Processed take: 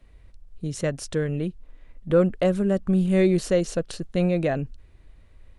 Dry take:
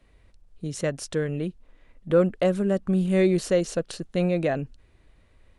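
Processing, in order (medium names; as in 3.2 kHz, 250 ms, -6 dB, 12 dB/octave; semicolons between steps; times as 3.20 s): bass shelf 100 Hz +9 dB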